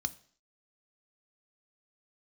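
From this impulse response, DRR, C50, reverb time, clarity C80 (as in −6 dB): 11.5 dB, 20.0 dB, 0.50 s, 23.5 dB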